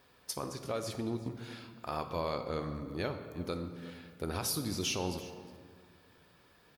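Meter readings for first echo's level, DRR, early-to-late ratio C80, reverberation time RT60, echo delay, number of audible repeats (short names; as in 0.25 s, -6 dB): -19.0 dB, 6.5 dB, 9.5 dB, 1.8 s, 0.358 s, 1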